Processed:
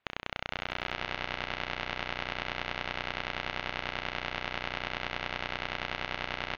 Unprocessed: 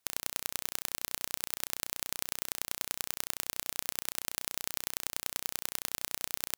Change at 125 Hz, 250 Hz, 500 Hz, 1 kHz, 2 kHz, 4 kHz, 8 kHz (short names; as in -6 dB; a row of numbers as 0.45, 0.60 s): +10.5, +8.0, +9.5, +10.0, +9.5, +2.5, -22.5 dB